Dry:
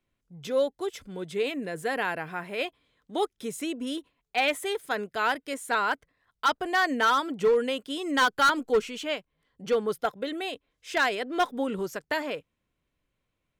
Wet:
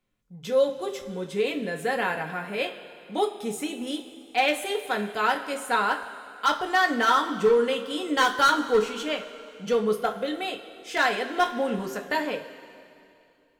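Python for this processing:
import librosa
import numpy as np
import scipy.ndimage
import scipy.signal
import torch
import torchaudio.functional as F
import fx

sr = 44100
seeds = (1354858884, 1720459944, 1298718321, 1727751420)

y = fx.rev_double_slope(x, sr, seeds[0], early_s=0.26, late_s=2.6, knee_db=-16, drr_db=2.0)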